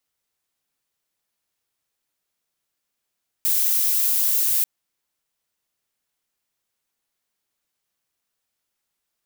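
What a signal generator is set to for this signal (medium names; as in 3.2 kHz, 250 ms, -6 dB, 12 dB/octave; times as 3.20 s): noise violet, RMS -20 dBFS 1.19 s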